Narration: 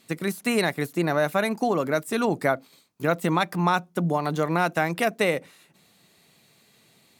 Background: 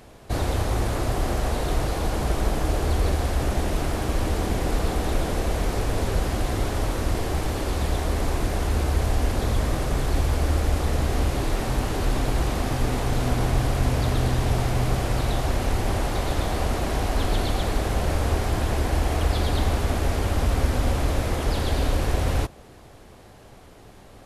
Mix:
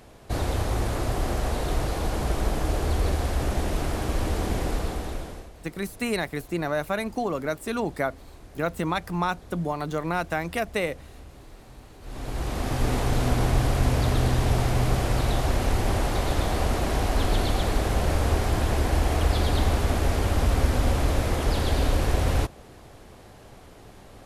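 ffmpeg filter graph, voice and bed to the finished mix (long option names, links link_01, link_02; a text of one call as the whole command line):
ffmpeg -i stem1.wav -i stem2.wav -filter_complex "[0:a]adelay=5550,volume=-4dB[link_01];[1:a]volume=20.5dB,afade=type=out:start_time=4.59:duration=0.92:silence=0.0944061,afade=type=in:start_time=12.01:duration=0.9:silence=0.0749894[link_02];[link_01][link_02]amix=inputs=2:normalize=0" out.wav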